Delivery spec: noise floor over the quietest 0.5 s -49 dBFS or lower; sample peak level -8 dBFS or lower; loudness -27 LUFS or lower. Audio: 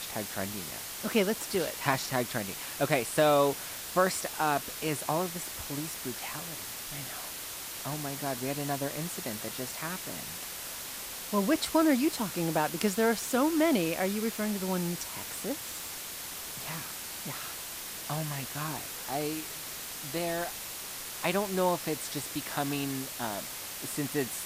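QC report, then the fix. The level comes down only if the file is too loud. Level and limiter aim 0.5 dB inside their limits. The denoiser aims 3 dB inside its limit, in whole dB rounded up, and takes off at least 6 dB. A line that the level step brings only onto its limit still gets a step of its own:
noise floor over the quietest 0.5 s -40 dBFS: fail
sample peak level -10.5 dBFS: OK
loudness -31.5 LUFS: OK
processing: denoiser 12 dB, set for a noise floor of -40 dBFS

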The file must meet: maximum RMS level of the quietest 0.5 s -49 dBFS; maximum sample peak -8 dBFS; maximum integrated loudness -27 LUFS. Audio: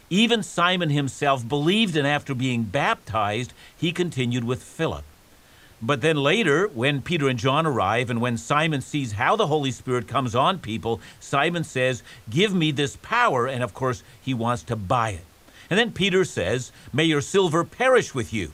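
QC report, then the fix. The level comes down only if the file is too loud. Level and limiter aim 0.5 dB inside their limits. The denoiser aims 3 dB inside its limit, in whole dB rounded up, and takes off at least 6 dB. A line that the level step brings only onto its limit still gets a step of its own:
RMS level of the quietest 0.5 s -52 dBFS: OK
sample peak -5.0 dBFS: fail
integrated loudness -23.0 LUFS: fail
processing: gain -4.5 dB

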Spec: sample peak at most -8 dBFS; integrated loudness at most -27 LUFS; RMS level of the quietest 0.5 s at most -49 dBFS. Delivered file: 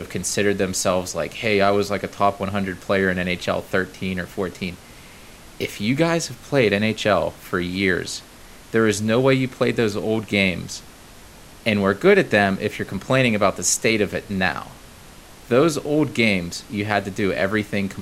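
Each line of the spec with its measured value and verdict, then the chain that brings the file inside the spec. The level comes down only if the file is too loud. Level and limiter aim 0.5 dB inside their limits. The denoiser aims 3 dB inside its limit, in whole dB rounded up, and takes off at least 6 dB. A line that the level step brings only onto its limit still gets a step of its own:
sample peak -2.0 dBFS: fail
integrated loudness -21.0 LUFS: fail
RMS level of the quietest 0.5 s -44 dBFS: fail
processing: gain -6.5 dB

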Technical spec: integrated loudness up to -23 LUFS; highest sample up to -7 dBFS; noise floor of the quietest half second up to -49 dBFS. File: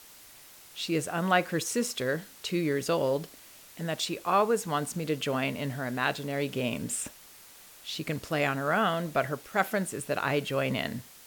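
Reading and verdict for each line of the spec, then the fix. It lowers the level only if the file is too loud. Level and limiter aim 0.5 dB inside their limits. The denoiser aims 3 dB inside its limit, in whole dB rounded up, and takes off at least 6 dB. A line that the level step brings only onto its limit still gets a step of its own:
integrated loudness -30.0 LUFS: OK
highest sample -10.5 dBFS: OK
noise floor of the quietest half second -52 dBFS: OK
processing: none

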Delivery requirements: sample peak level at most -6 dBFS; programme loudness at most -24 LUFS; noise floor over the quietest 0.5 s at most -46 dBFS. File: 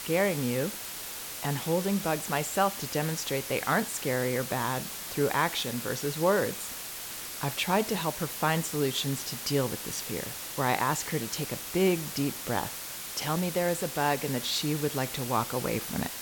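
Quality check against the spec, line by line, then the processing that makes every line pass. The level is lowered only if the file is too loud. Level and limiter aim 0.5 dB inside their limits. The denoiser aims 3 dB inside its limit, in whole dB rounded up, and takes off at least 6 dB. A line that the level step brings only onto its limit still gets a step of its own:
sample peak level -12.0 dBFS: OK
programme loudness -29.5 LUFS: OK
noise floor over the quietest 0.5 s -39 dBFS: fail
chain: denoiser 10 dB, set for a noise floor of -39 dBFS

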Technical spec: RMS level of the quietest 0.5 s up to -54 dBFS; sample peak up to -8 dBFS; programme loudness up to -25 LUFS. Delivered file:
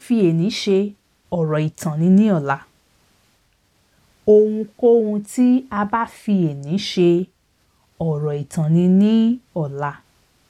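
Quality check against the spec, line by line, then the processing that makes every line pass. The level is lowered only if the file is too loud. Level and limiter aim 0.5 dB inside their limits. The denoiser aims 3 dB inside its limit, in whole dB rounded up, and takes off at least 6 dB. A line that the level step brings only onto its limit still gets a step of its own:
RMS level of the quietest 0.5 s -62 dBFS: OK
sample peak -4.0 dBFS: fail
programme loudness -18.5 LUFS: fail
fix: gain -7 dB

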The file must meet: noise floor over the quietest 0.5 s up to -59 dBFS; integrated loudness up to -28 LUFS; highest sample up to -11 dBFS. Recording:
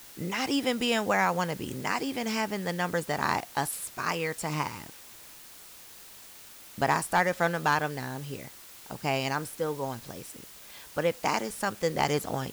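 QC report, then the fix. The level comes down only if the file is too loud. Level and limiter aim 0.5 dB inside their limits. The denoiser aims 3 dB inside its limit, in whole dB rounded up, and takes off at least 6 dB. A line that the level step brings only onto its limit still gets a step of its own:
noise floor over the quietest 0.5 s -49 dBFS: fail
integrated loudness -29.5 LUFS: OK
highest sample -14.0 dBFS: OK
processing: denoiser 13 dB, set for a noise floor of -49 dBFS

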